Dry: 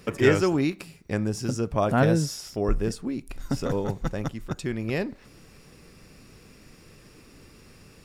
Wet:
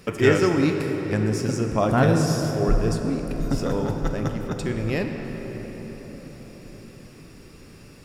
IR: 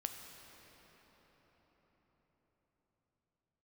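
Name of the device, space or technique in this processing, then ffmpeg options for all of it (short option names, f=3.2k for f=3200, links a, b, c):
cathedral: -filter_complex "[1:a]atrim=start_sample=2205[a];[0:a][a]afir=irnorm=-1:irlink=0,volume=4dB"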